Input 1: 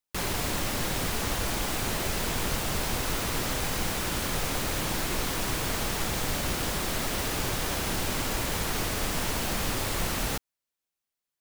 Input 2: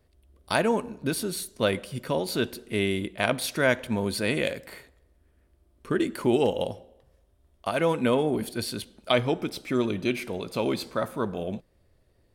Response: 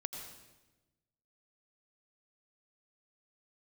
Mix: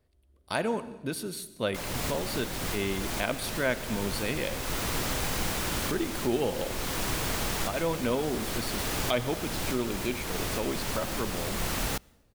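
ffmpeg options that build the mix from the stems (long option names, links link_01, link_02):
-filter_complex "[0:a]adelay=1600,volume=-1dB,asplit=2[link_01][link_02];[link_02]volume=-24dB[link_03];[1:a]volume=-8dB,asplit=3[link_04][link_05][link_06];[link_05]volume=-7dB[link_07];[link_06]apad=whole_len=573434[link_08];[link_01][link_08]sidechaincompress=threshold=-34dB:ratio=8:attack=5.2:release=575[link_09];[2:a]atrim=start_sample=2205[link_10];[link_03][link_07]amix=inputs=2:normalize=0[link_11];[link_11][link_10]afir=irnorm=-1:irlink=0[link_12];[link_09][link_04][link_12]amix=inputs=3:normalize=0"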